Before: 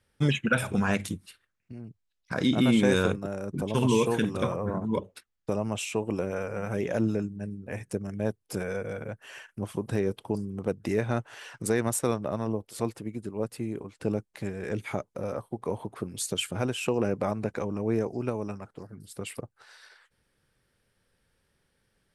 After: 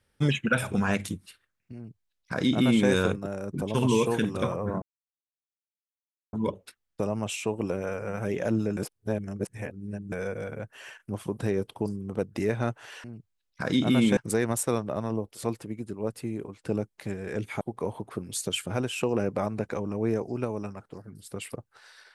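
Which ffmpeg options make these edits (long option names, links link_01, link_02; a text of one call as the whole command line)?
ffmpeg -i in.wav -filter_complex "[0:a]asplit=7[link_01][link_02][link_03][link_04][link_05][link_06][link_07];[link_01]atrim=end=4.82,asetpts=PTS-STARTPTS,afade=type=out:start_time=4.816:duration=0.004:curve=hsin,apad=pad_dur=1.51[link_08];[link_02]atrim=start=4.82:end=7.262,asetpts=PTS-STARTPTS,afade=type=in:duration=0.004:curve=hsin[link_09];[link_03]atrim=start=7.258:end=8.612,asetpts=PTS-STARTPTS,areverse[link_10];[link_04]atrim=start=8.608:end=11.532[link_11];[link_05]atrim=start=1.748:end=2.882[link_12];[link_06]atrim=start=11.528:end=14.972[link_13];[link_07]atrim=start=15.458[link_14];[link_08][link_09]concat=n=2:v=0:a=1[link_15];[link_15][link_10]acrossfade=duration=0.004:curve1=hsin:curve2=hsin[link_16];[link_16][link_11]acrossfade=duration=0.004:curve1=hsin:curve2=hsin[link_17];[link_17][link_12]acrossfade=duration=0.004:curve1=hsin:curve2=hsin[link_18];[link_18][link_13]acrossfade=duration=0.004:curve1=hsin:curve2=hsin[link_19];[link_19][link_14]acrossfade=duration=0.004:curve1=hsin:curve2=hsin" out.wav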